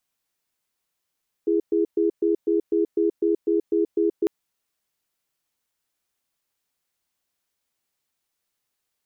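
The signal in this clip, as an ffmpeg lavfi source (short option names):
-f lavfi -i "aevalsrc='0.0944*(sin(2*PI*334*t)+sin(2*PI*413*t))*clip(min(mod(t,0.25),0.13-mod(t,0.25))/0.005,0,1)':d=2.8:s=44100"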